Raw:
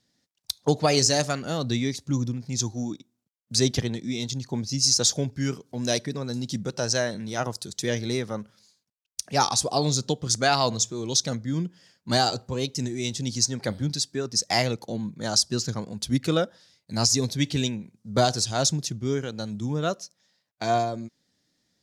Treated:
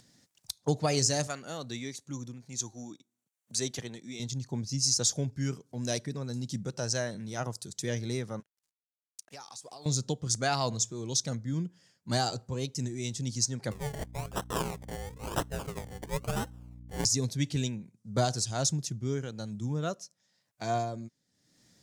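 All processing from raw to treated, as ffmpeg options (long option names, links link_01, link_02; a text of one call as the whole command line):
ffmpeg -i in.wav -filter_complex "[0:a]asettb=1/sr,asplit=3[link_01][link_02][link_03];[link_01]atrim=end=1.274[link_04];[link_02]atrim=start=1.27:end=4.2,asetpts=PTS-STARTPTS,afade=type=in:duration=0.004:curve=qsin,afade=type=out:start_time=2.926:duration=0.004:curve=qsin,highpass=frequency=480:poles=1,bandreject=frequency=5100:width=8.2[link_05];[link_03]atrim=start=4.196[link_06];[link_04][link_05]acrossfade=duration=0.004:curve1=hsin:curve2=qsin[link_07];[link_07][link_06]acrossfade=duration=0.004:curve1=qsin:curve2=hsin,asettb=1/sr,asplit=3[link_08][link_09][link_10];[link_08]atrim=end=8.404[link_11];[link_09]atrim=start=8.4:end=9.86,asetpts=PTS-STARTPTS,afade=type=in:duration=0.004:curve=qsin,afade=type=out:start_time=1.456:duration=0.004:curve=qsin,highpass=frequency=730:poles=1,aeval=exprs='sgn(val(0))*max(abs(val(0))-0.00211,0)':channel_layout=same,acompressor=threshold=-35dB:ratio=10:attack=3.2:release=140:knee=1:detection=peak[link_12];[link_10]atrim=start=9.856[link_13];[link_11][link_12]acrossfade=duration=0.004:curve1=hsin:curve2=qsin[link_14];[link_14][link_13]acrossfade=duration=0.004:curve1=qsin:curve2=hsin,asettb=1/sr,asplit=3[link_15][link_16][link_17];[link_15]atrim=end=13.714[link_18];[link_16]atrim=start=13.71:end=17.05,asetpts=PTS-STARTPTS,afade=type=in:duration=0.004:curve=qsin,afade=type=out:start_time=3.336:duration=0.004:curve=qsin,aeval=exprs='val(0)*sin(2*PI*290*n/s)':channel_layout=same,acrusher=samples=27:mix=1:aa=0.000001:lfo=1:lforange=16.2:lforate=1,aeval=exprs='val(0)+0.00891*(sin(2*PI*60*n/s)+sin(2*PI*2*60*n/s)/2+sin(2*PI*3*60*n/s)/3+sin(2*PI*4*60*n/s)/4+sin(2*PI*5*60*n/s)/5)':channel_layout=same[link_19];[link_17]atrim=start=17.046[link_20];[link_18][link_19]acrossfade=duration=0.004:curve1=hsin:curve2=qsin[link_21];[link_21][link_20]acrossfade=duration=0.004:curve1=qsin:curve2=hsin,equalizer=frequency=125:width_type=o:width=1:gain=5,equalizer=frequency=4000:width_type=o:width=1:gain=-3,equalizer=frequency=8000:width_type=o:width=1:gain=5,acompressor=mode=upward:threshold=-42dB:ratio=2.5,volume=-7.5dB" out.wav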